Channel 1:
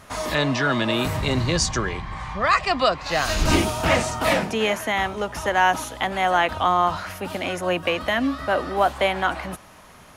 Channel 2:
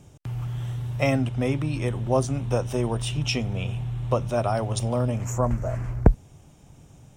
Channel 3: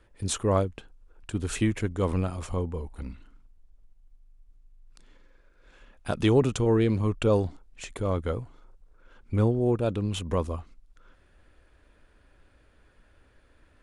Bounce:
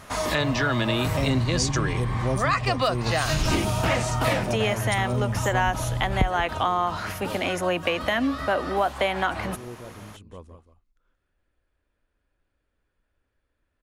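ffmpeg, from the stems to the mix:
-filter_complex "[0:a]volume=1.19[s0];[1:a]lowshelf=f=340:g=11.5,aexciter=amount=2.4:drive=4.2:freq=3300,adelay=150,volume=0.447,asplit=2[s1][s2];[s2]volume=0.15[s3];[2:a]volume=0.158,asplit=2[s4][s5];[s5]volume=0.299[s6];[s3][s6]amix=inputs=2:normalize=0,aecho=0:1:179:1[s7];[s0][s1][s4][s7]amix=inputs=4:normalize=0,acompressor=threshold=0.0891:ratio=3"

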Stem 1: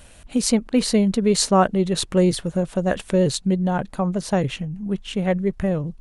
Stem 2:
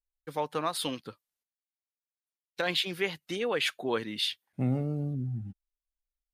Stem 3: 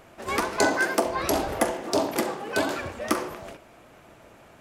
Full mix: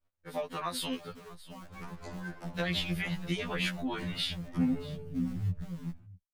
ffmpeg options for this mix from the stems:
-filter_complex "[0:a]lowpass=f=1600:w=0.5412,lowpass=f=1600:w=1.3066,acompressor=threshold=0.0562:ratio=16,acrusher=bits=6:dc=4:mix=0:aa=0.000001,volume=0.141[s0];[1:a]equalizer=f=2000:t=o:w=0.77:g=3.5,acompressor=threshold=0.0316:ratio=3,volume=1.26,asplit=2[s1][s2];[s2]volume=0.112[s3];[2:a]lowpass=f=3000:p=1,adelay=1450,volume=0.119,asplit=2[s4][s5];[s5]volume=0.0841[s6];[s3][s6]amix=inputs=2:normalize=0,aecho=0:1:639:1[s7];[s0][s1][s4][s7]amix=inputs=4:normalize=0,agate=range=0.0224:threshold=0.002:ratio=3:detection=peak,asubboost=boost=9:cutoff=140,afftfilt=real='re*2*eq(mod(b,4),0)':imag='im*2*eq(mod(b,4),0)':win_size=2048:overlap=0.75"

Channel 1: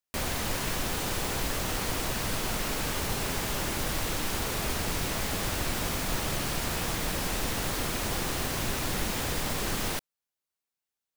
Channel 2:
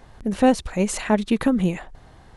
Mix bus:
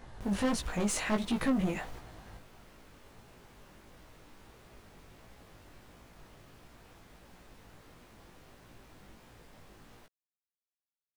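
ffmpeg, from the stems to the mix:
-filter_complex "[0:a]highshelf=f=3200:g=-9.5,volume=0.188,asplit=2[s0][s1];[s1]volume=0.501[s2];[1:a]asoftclip=type=tanh:threshold=0.0708,volume=1.06,asplit=2[s3][s4];[s4]apad=whole_len=492191[s5];[s0][s5]sidechaingate=range=0.0224:threshold=0.00891:ratio=16:detection=peak[s6];[s2]aecho=0:1:72:1[s7];[s6][s3][s7]amix=inputs=3:normalize=0,flanger=delay=16.5:depth=3.8:speed=1.5,asoftclip=type=tanh:threshold=0.106"

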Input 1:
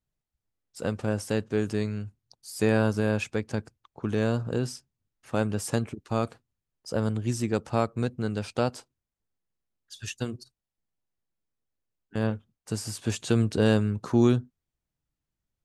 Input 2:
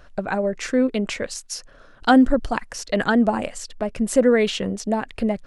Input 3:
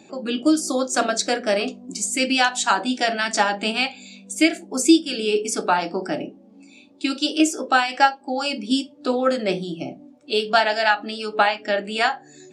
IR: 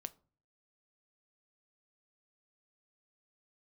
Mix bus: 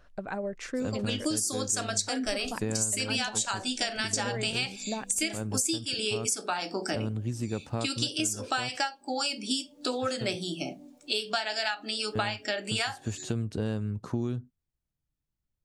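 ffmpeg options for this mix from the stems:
-filter_complex "[0:a]lowshelf=f=240:g=7.5,volume=0.501[s0];[1:a]volume=0.299[s1];[2:a]crystalizer=i=5:c=0,adelay=800,volume=0.562[s2];[s0][s1][s2]amix=inputs=3:normalize=0,acompressor=threshold=0.0447:ratio=6"

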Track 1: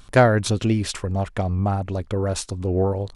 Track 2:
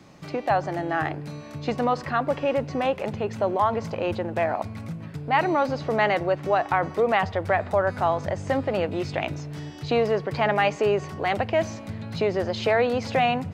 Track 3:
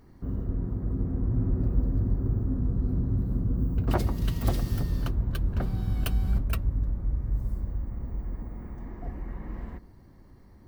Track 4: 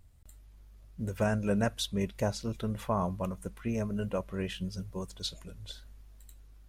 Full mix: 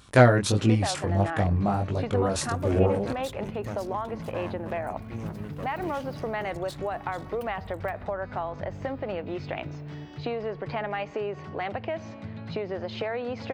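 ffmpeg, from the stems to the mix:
-filter_complex "[0:a]flanger=delay=18.5:depth=6.7:speed=1.5,volume=1.19[s0];[1:a]lowpass=3700,acompressor=threshold=0.0631:ratio=6,adelay=350,volume=0.668[s1];[2:a]adelay=1350,volume=0.15[s2];[3:a]aeval=exprs='max(val(0),0)':c=same,adelay=1450,volume=0.668[s3];[s0][s1][s2][s3]amix=inputs=4:normalize=0,highpass=71"

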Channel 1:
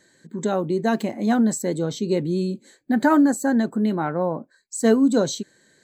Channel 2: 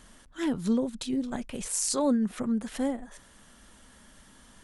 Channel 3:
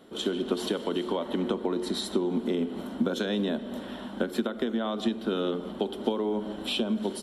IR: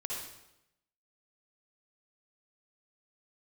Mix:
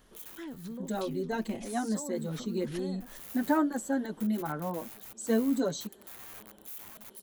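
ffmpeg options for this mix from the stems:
-filter_complex "[0:a]asplit=2[s0][s1];[s1]adelay=5.7,afreqshift=1.8[s2];[s0][s2]amix=inputs=2:normalize=1,adelay=450,volume=0.422[s3];[1:a]agate=range=0.316:threshold=0.00355:ratio=16:detection=peak,acompressor=threshold=0.0126:ratio=4,volume=1.19,asplit=2[s4][s5];[2:a]equalizer=f=280:t=o:w=0.43:g=-8.5,aeval=exprs='(mod(31.6*val(0)+1,2)-1)/31.6':c=same,aexciter=amount=4.5:drive=5.3:freq=6900,volume=0.2[s6];[s5]apad=whole_len=318414[s7];[s6][s7]sidechaincompress=threshold=0.00316:ratio=8:attack=16:release=292[s8];[s4][s8]amix=inputs=2:normalize=0,equalizer=f=8100:t=o:w=0.43:g=-8.5,alimiter=level_in=2.66:limit=0.0631:level=0:latency=1:release=473,volume=0.376,volume=1[s9];[s3][s9]amix=inputs=2:normalize=0"

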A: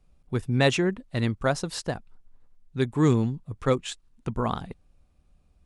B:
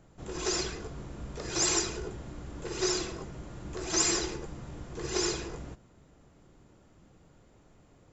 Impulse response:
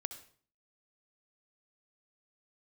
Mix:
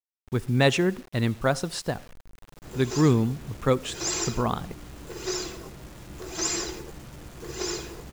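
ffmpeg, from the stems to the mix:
-filter_complex "[0:a]volume=0.841,asplit=3[s0][s1][s2];[s1]volume=0.376[s3];[1:a]adelay=2450,volume=0.794,asplit=2[s4][s5];[s5]volume=0.133[s6];[s2]apad=whole_len=466350[s7];[s4][s7]sidechaincompress=threshold=0.0562:ratio=8:attack=16:release=424[s8];[2:a]atrim=start_sample=2205[s9];[s3][s6]amix=inputs=2:normalize=0[s10];[s10][s9]afir=irnorm=-1:irlink=0[s11];[s0][s8][s11]amix=inputs=3:normalize=0,acrusher=bits=7:mix=0:aa=0.000001"

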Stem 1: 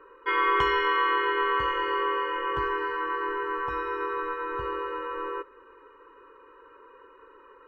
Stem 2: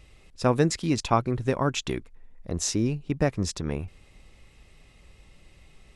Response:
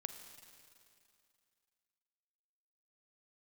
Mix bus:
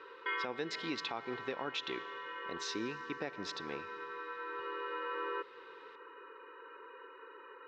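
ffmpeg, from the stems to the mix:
-filter_complex "[0:a]acompressor=threshold=0.01:ratio=1.5,alimiter=level_in=1.19:limit=0.0631:level=0:latency=1,volume=0.841,volume=1.41,asplit=2[s0][s1];[s1]volume=0.237[s2];[1:a]volume=0.447,asplit=3[s3][s4][s5];[s4]volume=0.631[s6];[s5]apad=whole_len=338339[s7];[s0][s7]sidechaincompress=threshold=0.00631:ratio=8:attack=46:release=1480[s8];[2:a]atrim=start_sample=2205[s9];[s2][s6]amix=inputs=2:normalize=0[s10];[s10][s9]afir=irnorm=-1:irlink=0[s11];[s8][s3][s11]amix=inputs=3:normalize=0,highpass=470,equalizer=f=610:t=q:w=4:g=-8,equalizer=f=1100:t=q:w=4:g=-8,equalizer=f=3800:t=q:w=4:g=5,lowpass=f=4400:w=0.5412,lowpass=f=4400:w=1.3066,alimiter=level_in=1.33:limit=0.0631:level=0:latency=1:release=154,volume=0.75"

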